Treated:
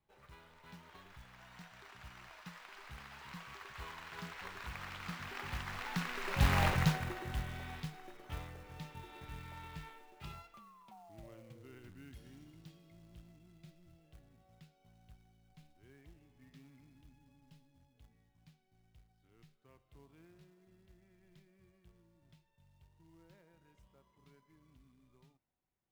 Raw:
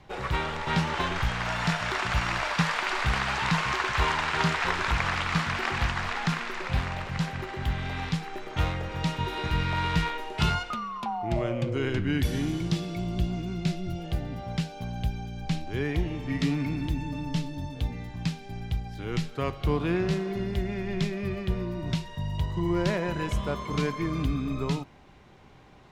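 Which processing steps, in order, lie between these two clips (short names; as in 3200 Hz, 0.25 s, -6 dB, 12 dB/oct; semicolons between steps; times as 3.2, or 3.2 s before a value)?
Doppler pass-by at 6.65, 17 m/s, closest 2.4 m; short-mantissa float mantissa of 2-bit; gain +4 dB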